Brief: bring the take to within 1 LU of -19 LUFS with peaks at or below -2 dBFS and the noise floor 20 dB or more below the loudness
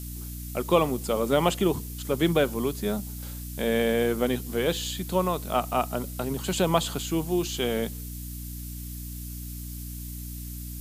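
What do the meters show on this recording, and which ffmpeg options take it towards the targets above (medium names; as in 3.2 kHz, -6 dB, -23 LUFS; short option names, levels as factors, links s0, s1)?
hum 60 Hz; highest harmonic 300 Hz; hum level -35 dBFS; noise floor -37 dBFS; noise floor target -48 dBFS; loudness -28.0 LUFS; peak level -8.0 dBFS; loudness target -19.0 LUFS
-> -af "bandreject=f=60:t=h:w=4,bandreject=f=120:t=h:w=4,bandreject=f=180:t=h:w=4,bandreject=f=240:t=h:w=4,bandreject=f=300:t=h:w=4"
-af "afftdn=nr=11:nf=-37"
-af "volume=2.82,alimiter=limit=0.794:level=0:latency=1"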